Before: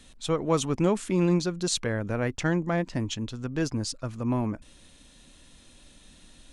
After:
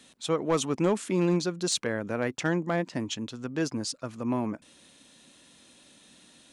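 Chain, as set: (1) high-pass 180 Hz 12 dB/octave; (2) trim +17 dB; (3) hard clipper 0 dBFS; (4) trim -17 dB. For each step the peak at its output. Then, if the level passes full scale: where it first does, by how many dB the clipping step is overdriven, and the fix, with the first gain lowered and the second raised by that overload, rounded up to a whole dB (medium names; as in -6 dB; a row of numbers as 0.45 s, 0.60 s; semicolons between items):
-11.0 dBFS, +6.0 dBFS, 0.0 dBFS, -17.0 dBFS; step 2, 6.0 dB; step 2 +11 dB, step 4 -11 dB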